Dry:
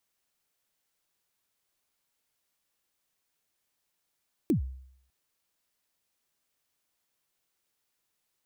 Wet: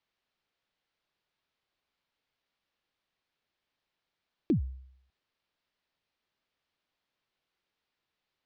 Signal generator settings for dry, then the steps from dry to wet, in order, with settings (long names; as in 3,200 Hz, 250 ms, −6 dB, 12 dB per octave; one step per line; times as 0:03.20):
synth kick length 0.60 s, from 370 Hz, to 65 Hz, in 111 ms, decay 0.68 s, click on, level −19 dB
low-pass filter 4,400 Hz 24 dB per octave